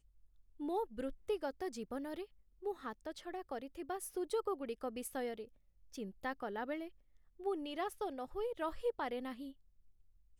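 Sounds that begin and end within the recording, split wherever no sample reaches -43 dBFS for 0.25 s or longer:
0.60–2.24 s
2.65–5.43 s
5.94–6.87 s
7.41–9.49 s

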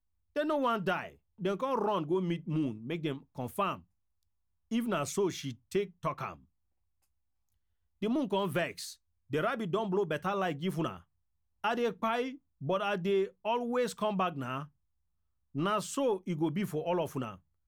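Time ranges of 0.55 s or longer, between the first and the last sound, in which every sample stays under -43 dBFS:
3.78–4.71 s
6.34–8.02 s
10.98–11.64 s
14.65–15.55 s

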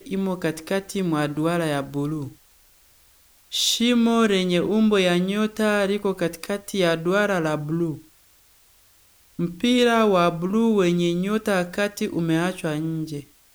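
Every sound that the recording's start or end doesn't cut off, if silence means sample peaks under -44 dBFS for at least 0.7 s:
3.52–8.03 s

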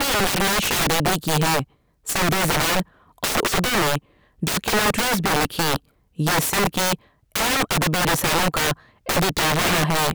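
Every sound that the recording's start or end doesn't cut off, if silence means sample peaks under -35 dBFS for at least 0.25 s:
2.07–2.82 s
3.18–3.99 s
4.42–5.77 s
6.19–6.95 s
7.36–8.73 s

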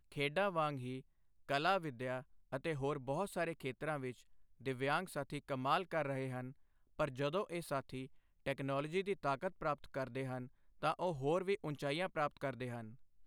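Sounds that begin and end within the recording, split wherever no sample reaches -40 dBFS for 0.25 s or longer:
1.50–2.20 s
2.53–4.11 s
4.66–6.49 s
7.00–8.05 s
8.46–10.44 s
10.83–12.81 s

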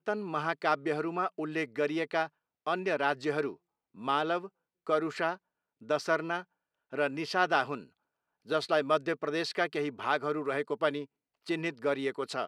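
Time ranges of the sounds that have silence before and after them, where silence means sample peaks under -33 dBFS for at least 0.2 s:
2.67–3.51 s
4.05–4.45 s
4.89–5.34 s
5.90–6.41 s
6.94–7.77 s
8.50–11.03 s

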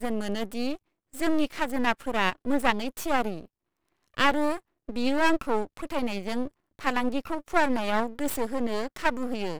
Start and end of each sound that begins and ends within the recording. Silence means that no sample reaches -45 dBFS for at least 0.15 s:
1.13–3.45 s
4.14–4.59 s
4.89–6.48 s

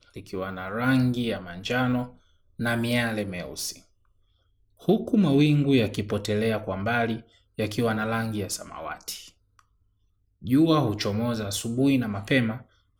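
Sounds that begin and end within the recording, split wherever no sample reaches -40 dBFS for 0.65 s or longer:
4.83–9.59 s

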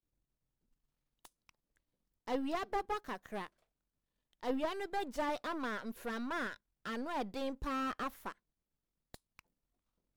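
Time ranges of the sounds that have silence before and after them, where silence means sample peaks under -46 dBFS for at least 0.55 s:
1.25–1.49 s
2.27–3.47 s
4.43–8.32 s
9.14–9.39 s

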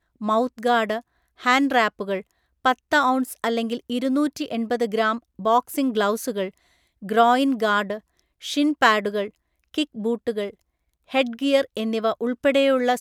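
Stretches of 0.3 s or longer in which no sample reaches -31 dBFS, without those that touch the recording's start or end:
0.99–1.43 s
2.21–2.65 s
6.49–7.04 s
7.98–8.44 s
9.28–9.74 s
10.50–11.12 s

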